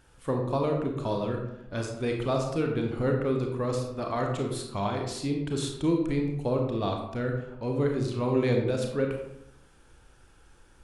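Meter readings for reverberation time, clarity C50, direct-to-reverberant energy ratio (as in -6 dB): 0.85 s, 4.0 dB, 2.0 dB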